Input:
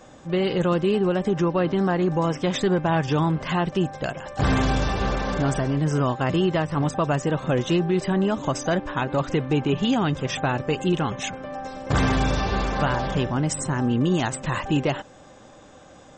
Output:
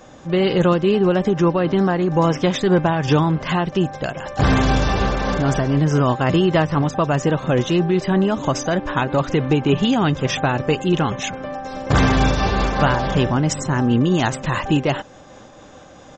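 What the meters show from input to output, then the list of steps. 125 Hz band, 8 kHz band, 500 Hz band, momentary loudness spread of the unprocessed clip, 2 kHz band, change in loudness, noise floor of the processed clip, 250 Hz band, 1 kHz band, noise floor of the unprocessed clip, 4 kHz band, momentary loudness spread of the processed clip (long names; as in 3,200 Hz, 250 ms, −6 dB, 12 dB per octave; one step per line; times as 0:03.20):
+5.0 dB, +3.0 dB, +5.0 dB, 4 LU, +5.0 dB, +5.0 dB, −43 dBFS, +5.0 dB, +5.0 dB, −48 dBFS, +5.0 dB, 5 LU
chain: downsampling to 16,000 Hz
amplitude modulation by smooth noise, depth 60%
level +8 dB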